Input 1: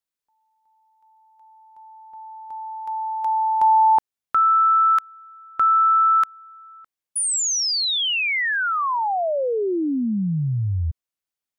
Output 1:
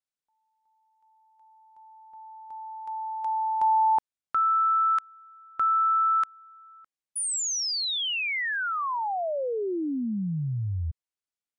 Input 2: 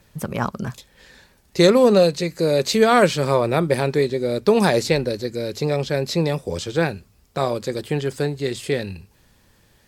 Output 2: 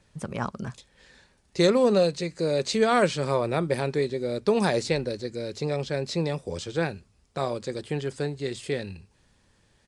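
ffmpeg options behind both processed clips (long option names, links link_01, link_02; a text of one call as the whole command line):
ffmpeg -i in.wav -af "aresample=22050,aresample=44100,volume=-6.5dB" out.wav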